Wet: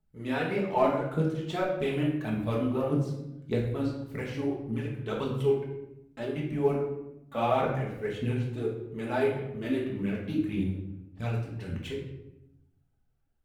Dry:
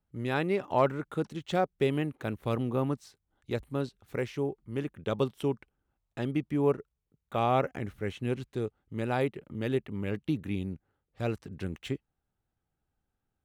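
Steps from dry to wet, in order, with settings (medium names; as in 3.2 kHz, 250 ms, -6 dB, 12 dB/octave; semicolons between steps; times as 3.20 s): phaser 1.7 Hz, delay 3.8 ms, feedback 67%; simulated room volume 280 m³, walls mixed, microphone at 1.5 m; trim -6.5 dB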